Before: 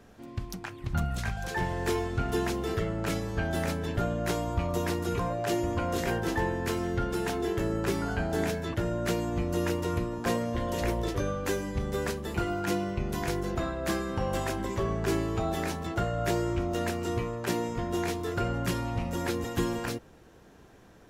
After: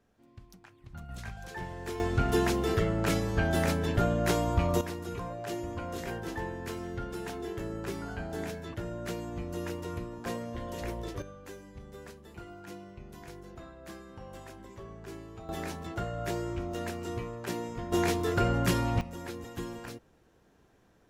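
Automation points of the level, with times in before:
−16 dB
from 0:01.09 −9 dB
from 0:02.00 +2.5 dB
from 0:04.81 −7.5 dB
from 0:11.22 −16 dB
from 0:15.49 −5.5 dB
from 0:17.92 +3 dB
from 0:19.01 −9.5 dB

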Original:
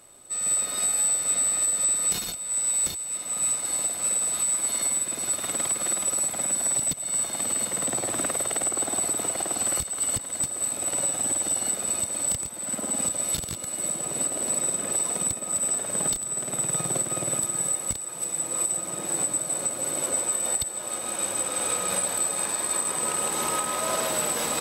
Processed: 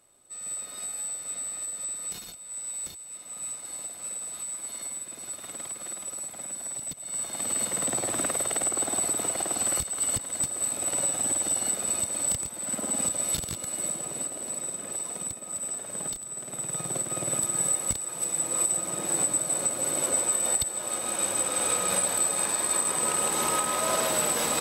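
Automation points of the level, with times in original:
0:06.79 −10.5 dB
0:07.61 −1 dB
0:13.76 −1 dB
0:14.40 −7.5 dB
0:16.48 −7.5 dB
0:17.60 +0.5 dB

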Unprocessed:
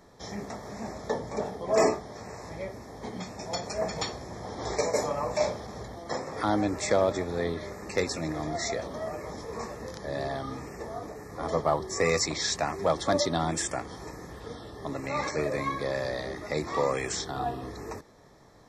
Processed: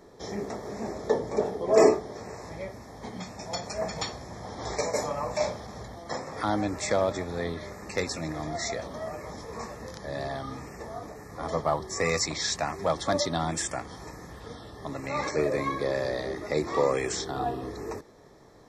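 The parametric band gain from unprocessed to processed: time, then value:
parametric band 390 Hz 0.92 octaves
0:02.02 +8 dB
0:02.76 −3.5 dB
0:14.95 −3.5 dB
0:15.40 +5 dB

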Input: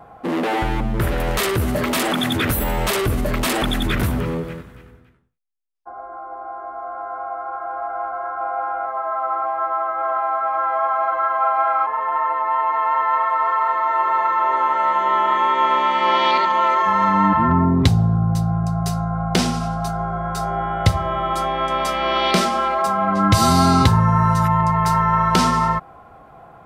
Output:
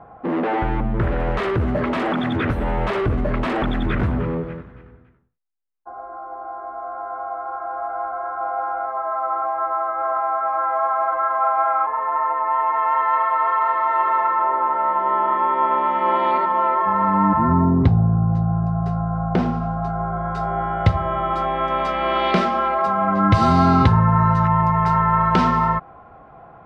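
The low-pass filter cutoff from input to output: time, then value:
0:12.34 1,800 Hz
0:13.09 3,100 Hz
0:14.03 3,100 Hz
0:14.55 1,300 Hz
0:19.70 1,300 Hz
0:20.43 2,400 Hz

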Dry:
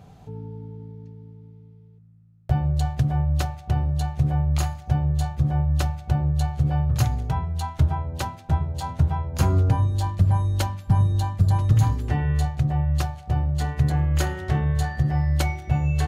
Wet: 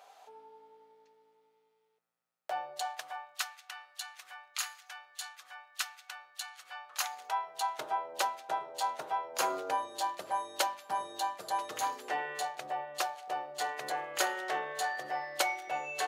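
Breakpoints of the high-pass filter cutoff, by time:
high-pass filter 24 dB per octave
0:02.73 620 Hz
0:03.55 1,300 Hz
0:06.63 1,300 Hz
0:07.77 480 Hz

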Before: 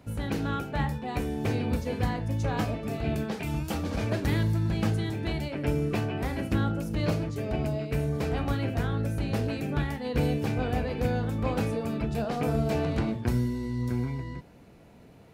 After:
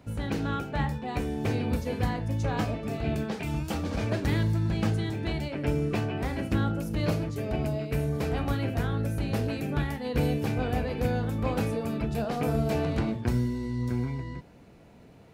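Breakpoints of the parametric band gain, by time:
parametric band 12,000 Hz 0.43 octaves
0:01.18 −7 dB
0:01.86 +3 dB
0:02.61 −5.5 dB
0:06.37 −5.5 dB
0:06.89 +4 dB
0:12.80 +4 dB
0:13.33 −5.5 dB

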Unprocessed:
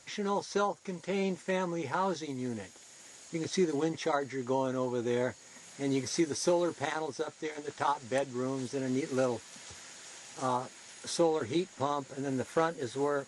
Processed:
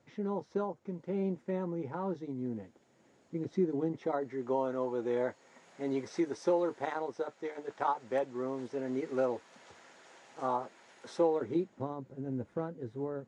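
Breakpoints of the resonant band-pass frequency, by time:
resonant band-pass, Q 0.6
0:03.85 210 Hz
0:04.62 620 Hz
0:11.20 620 Hz
0:12.01 130 Hz

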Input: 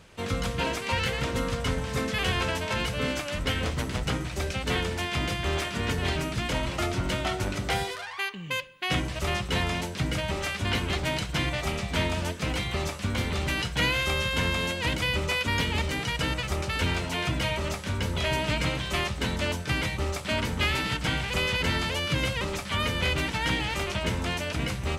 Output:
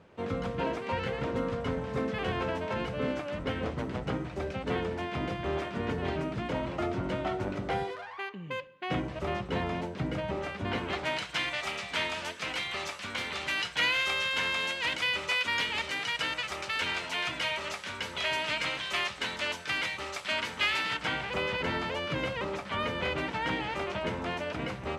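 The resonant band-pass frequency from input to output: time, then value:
resonant band-pass, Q 0.5
0:10.64 420 Hz
0:11.34 2,200 Hz
0:20.76 2,200 Hz
0:21.36 660 Hz

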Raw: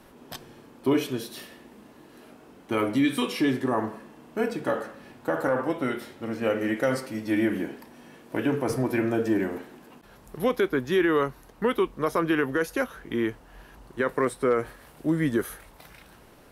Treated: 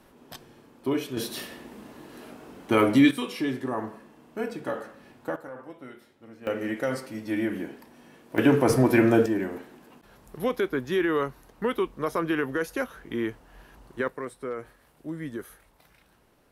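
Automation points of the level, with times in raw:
−4 dB
from 0:01.17 +5 dB
from 0:03.11 −4.5 dB
from 0:05.36 −16 dB
from 0:06.47 −3.5 dB
from 0:08.38 +6 dB
from 0:09.26 −2.5 dB
from 0:14.08 −10.5 dB

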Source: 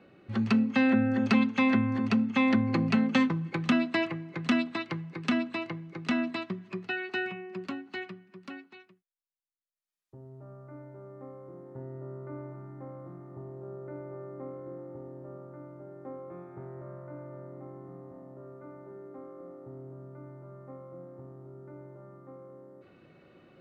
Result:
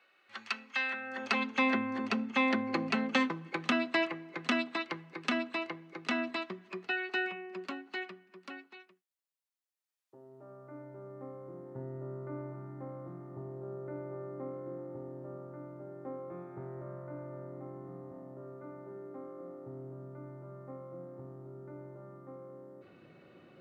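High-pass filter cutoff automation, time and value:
0:00.94 1,300 Hz
0:01.56 360 Hz
0:10.21 360 Hz
0:11.28 88 Hz

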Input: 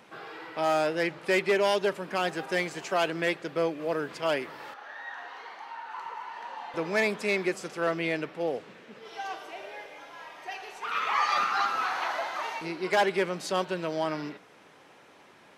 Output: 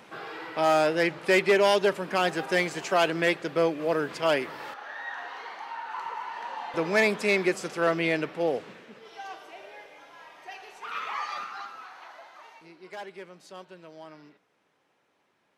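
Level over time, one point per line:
0:08.69 +3.5 dB
0:09.13 −4 dB
0:10.97 −4 dB
0:11.89 −16 dB

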